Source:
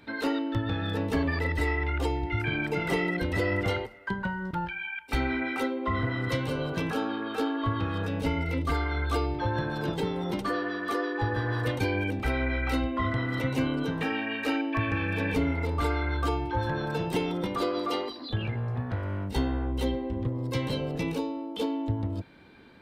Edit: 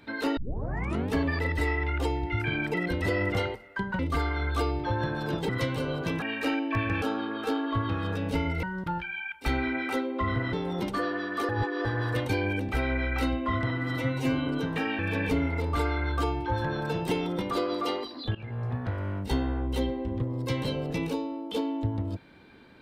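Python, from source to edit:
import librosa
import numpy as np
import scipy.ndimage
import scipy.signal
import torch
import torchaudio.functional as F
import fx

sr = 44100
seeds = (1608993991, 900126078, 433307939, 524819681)

y = fx.edit(x, sr, fx.tape_start(start_s=0.37, length_s=0.76),
    fx.cut(start_s=2.74, length_s=0.31),
    fx.swap(start_s=4.3, length_s=1.9, other_s=8.54, other_length_s=1.5),
    fx.reverse_span(start_s=11.0, length_s=0.36),
    fx.stretch_span(start_s=13.21, length_s=0.52, factor=1.5),
    fx.move(start_s=14.24, length_s=0.8, to_s=6.93),
    fx.fade_in_from(start_s=18.4, length_s=0.3, floor_db=-18.5), tone=tone)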